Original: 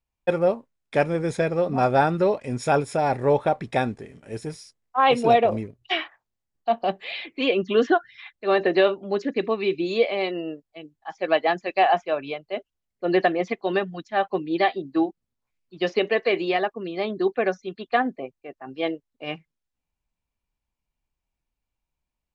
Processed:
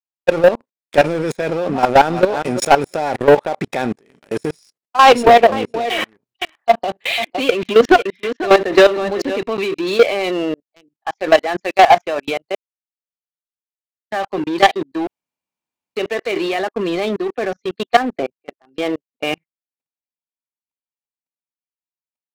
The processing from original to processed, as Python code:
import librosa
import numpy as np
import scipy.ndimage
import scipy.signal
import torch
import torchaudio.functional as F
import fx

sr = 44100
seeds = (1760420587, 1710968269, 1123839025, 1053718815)

y = fx.echo_throw(x, sr, start_s=1.69, length_s=0.55, ms=350, feedback_pct=30, wet_db=-14.5)
y = fx.echo_single(y, sr, ms=499, db=-13.0, at=(5.02, 9.46))
y = fx.high_shelf(y, sr, hz=4200.0, db=-11.0, at=(17.19, 17.64))
y = fx.edit(y, sr, fx.silence(start_s=12.55, length_s=1.56),
    fx.room_tone_fill(start_s=15.07, length_s=0.89), tone=tone)
y = scipy.signal.sosfilt(scipy.signal.butter(2, 220.0, 'highpass', fs=sr, output='sos'), y)
y = fx.level_steps(y, sr, step_db=18)
y = fx.leveller(y, sr, passes=3)
y = y * librosa.db_to_amplitude(5.5)